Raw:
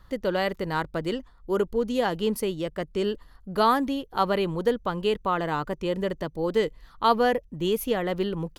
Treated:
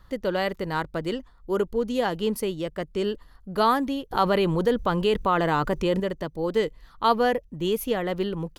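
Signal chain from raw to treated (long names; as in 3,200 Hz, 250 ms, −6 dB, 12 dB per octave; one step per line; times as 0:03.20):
0:04.11–0:06.00: envelope flattener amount 50%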